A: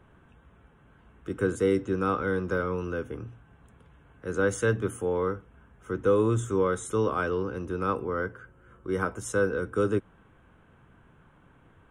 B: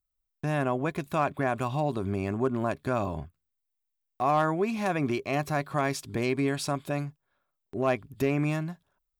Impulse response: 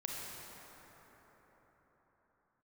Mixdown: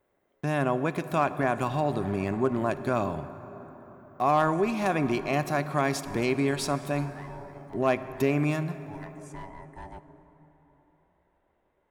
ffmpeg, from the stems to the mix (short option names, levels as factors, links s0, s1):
-filter_complex "[0:a]asoftclip=type=hard:threshold=0.0944,aeval=exprs='val(0)*sin(2*PI*480*n/s)':c=same,volume=0.188,asplit=2[s0][s1];[s1]volume=0.224[s2];[1:a]highpass=110,volume=1,asplit=3[s3][s4][s5];[s4]volume=0.299[s6];[s5]apad=whole_len=524947[s7];[s0][s7]sidechaincompress=threshold=0.0355:ratio=8:attack=16:release=585[s8];[2:a]atrim=start_sample=2205[s9];[s2][s6]amix=inputs=2:normalize=0[s10];[s10][s9]afir=irnorm=-1:irlink=0[s11];[s8][s3][s11]amix=inputs=3:normalize=0"